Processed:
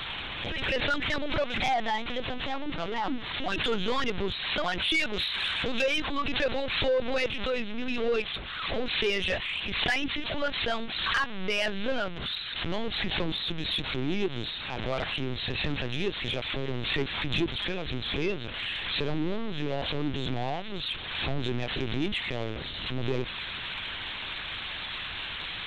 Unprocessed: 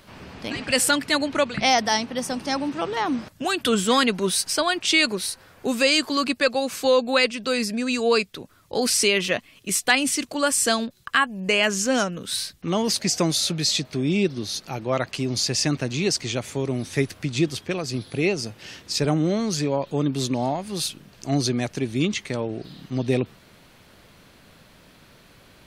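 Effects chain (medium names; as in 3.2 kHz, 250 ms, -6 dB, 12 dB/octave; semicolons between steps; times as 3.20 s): zero-crossing glitches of -10.5 dBFS; LPC vocoder at 8 kHz pitch kept; 5.13–5.82 s: treble shelf 2.2 kHz +11.5 dB; saturation -14.5 dBFS, distortion -14 dB; swell ahead of each attack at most 41 dB/s; trim -5 dB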